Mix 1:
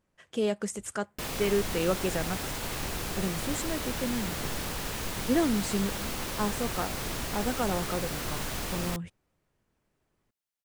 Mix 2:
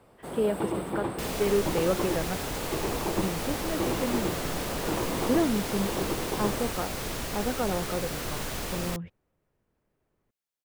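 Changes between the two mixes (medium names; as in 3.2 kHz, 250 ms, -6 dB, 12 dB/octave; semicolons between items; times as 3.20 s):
speech: add distance through air 320 m; first sound: unmuted; master: add peaking EQ 480 Hz +3.5 dB 0.81 oct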